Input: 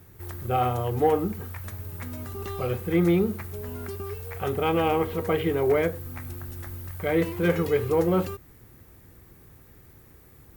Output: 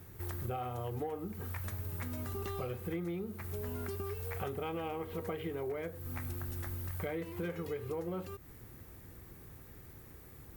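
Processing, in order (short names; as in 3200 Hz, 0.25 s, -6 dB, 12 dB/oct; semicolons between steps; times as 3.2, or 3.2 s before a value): compressor 16:1, threshold -34 dBFS, peak gain reduction 18.5 dB; gain -1 dB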